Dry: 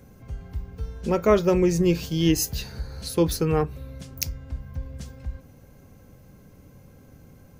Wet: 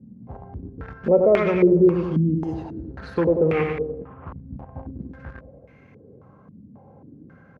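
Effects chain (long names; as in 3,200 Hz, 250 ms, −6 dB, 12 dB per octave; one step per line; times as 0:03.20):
0:03.21–0:04.67: variable-slope delta modulation 16 kbit/s
on a send: repeating echo 93 ms, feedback 52%, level −6.5 dB
on the sum: brickwall limiter −16 dBFS, peak gain reduction 9.5 dB
in parallel at −12 dB: bit reduction 5 bits
on the sum: high-pass filter 110 Hz 12 dB per octave
low-pass on a step sequencer 3.7 Hz 220–2,200 Hz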